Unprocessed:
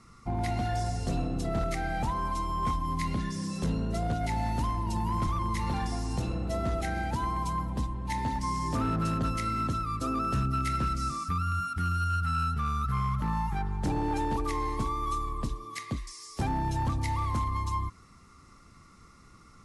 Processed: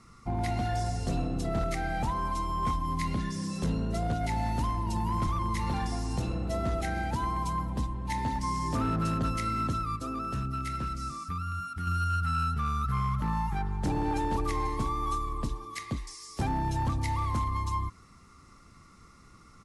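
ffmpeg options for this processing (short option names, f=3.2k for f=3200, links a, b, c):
-filter_complex "[0:a]asplit=2[a][b];[b]afade=t=in:st=13.45:d=0.01,afade=t=out:st=14.18:d=0.01,aecho=0:1:490|980|1470|1960|2450:0.281838|0.126827|0.0570723|0.0256825|0.0115571[c];[a][c]amix=inputs=2:normalize=0,asplit=3[d][e][f];[d]atrim=end=9.962[g];[e]atrim=start=9.958:end=11.872,asetpts=PTS-STARTPTS,volume=-4.5dB[h];[f]atrim=start=11.868[i];[g][h]acrossfade=d=0.004:c1=hsin:c2=hsin[j];[j][i]acrossfade=d=0.004:c1=hsin:c2=hsin"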